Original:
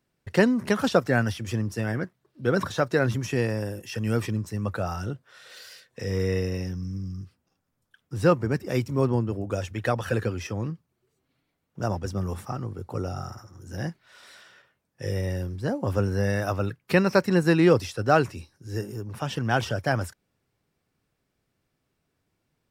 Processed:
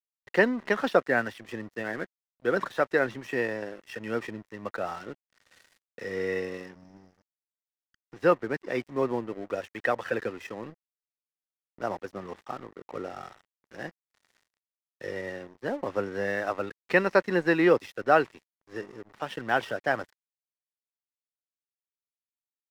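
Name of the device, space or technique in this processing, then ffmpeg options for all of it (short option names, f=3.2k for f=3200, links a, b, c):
pocket radio on a weak battery: -af "highpass=320,lowpass=3.2k,aeval=exprs='sgn(val(0))*max(abs(val(0))-0.00473,0)':c=same,equalizer=f=1.9k:t=o:w=0.2:g=6.5"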